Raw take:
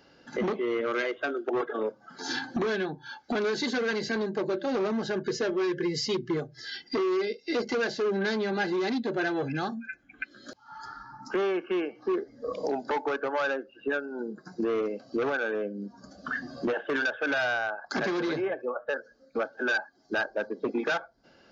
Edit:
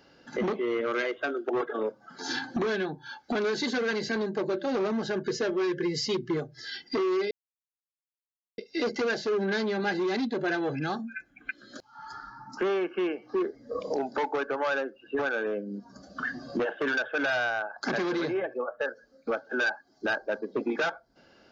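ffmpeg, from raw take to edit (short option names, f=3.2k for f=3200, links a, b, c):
-filter_complex "[0:a]asplit=3[a][b][c];[a]atrim=end=7.31,asetpts=PTS-STARTPTS,afade=t=out:st=7.306:d=0.004:c=hsin,apad=pad_dur=1.27[d];[b]atrim=start=7.31:end=13.922,asetpts=PTS-STARTPTS,afade=t=in:d=0.004:c=hsin[e];[c]atrim=start=15.268[f];[d][e]concat=n=2:v=0:a=1[g];[g][f]acrossfade=d=0.004:c1=hsin:c2=hsin"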